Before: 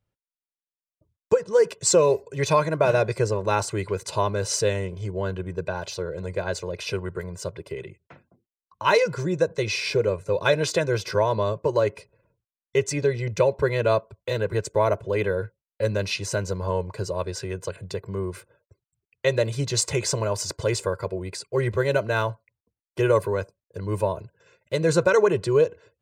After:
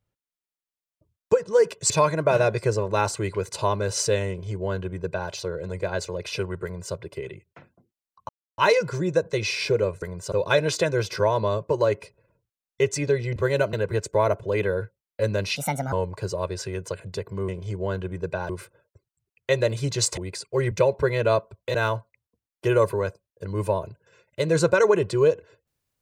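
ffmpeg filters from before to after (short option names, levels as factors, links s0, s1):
-filter_complex "[0:a]asplit=14[s0][s1][s2][s3][s4][s5][s6][s7][s8][s9][s10][s11][s12][s13];[s0]atrim=end=1.902[s14];[s1]atrim=start=2.438:end=8.83,asetpts=PTS-STARTPTS,afade=t=out:st=6.388:d=0.004:c=hsin,apad=pad_dur=0.29[s15];[s2]atrim=start=8.83:end=10.272,asetpts=PTS-STARTPTS,afade=t=in:d=0.004:c=hsin[s16];[s3]atrim=start=7.178:end=7.482[s17];[s4]atrim=start=10.268:end=13.312[s18];[s5]atrim=start=21.708:end=22.082[s19];[s6]atrim=start=14.338:end=16.174[s20];[s7]atrim=start=16.17:end=16.69,asetpts=PTS-STARTPTS,asetrate=63063,aresample=44100,atrim=end_sample=16036,asetpts=PTS-STARTPTS[s21];[s8]atrim=start=16.686:end=18.252[s22];[s9]atrim=start=4.828:end=5.842[s23];[s10]atrim=start=18.248:end=19.932[s24];[s11]atrim=start=21.168:end=21.712[s25];[s12]atrim=start=13.308:end=14.342[s26];[s13]atrim=start=22.078[s27];[s15][s16]concat=n=2:v=0:a=1[s28];[s14][s28]acrossfade=d=0.004:c1=hsin:c2=hsin[s29];[s29][s17]acrossfade=d=0.004:c1=hsin:c2=hsin[s30];[s30][s18]acrossfade=d=0.004:c1=hsin:c2=hsin[s31];[s31][s19]acrossfade=d=0.004:c1=hsin:c2=hsin[s32];[s32][s20]acrossfade=d=0.004:c1=hsin:c2=hsin[s33];[s33][s21]acrossfade=d=0.004:c1=hsin:c2=hsin[s34];[s34][s22]acrossfade=d=0.004:c1=hsin:c2=hsin[s35];[s35][s23]acrossfade=d=0.004:c1=hsin:c2=hsin[s36];[s36][s24]acrossfade=d=0.004:c1=hsin:c2=hsin[s37];[s37][s25]acrossfade=d=0.004:c1=hsin:c2=hsin[s38];[s38][s26]acrossfade=d=0.004:c1=hsin:c2=hsin[s39];[s39][s27]acrossfade=d=0.004:c1=hsin:c2=hsin"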